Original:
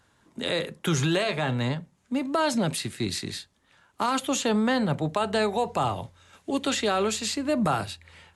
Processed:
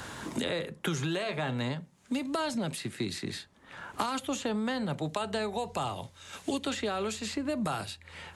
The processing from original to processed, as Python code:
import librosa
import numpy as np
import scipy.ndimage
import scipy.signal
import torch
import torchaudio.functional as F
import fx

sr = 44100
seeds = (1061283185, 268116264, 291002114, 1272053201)

y = fx.band_squash(x, sr, depth_pct=100)
y = F.gain(torch.from_numpy(y), -7.5).numpy()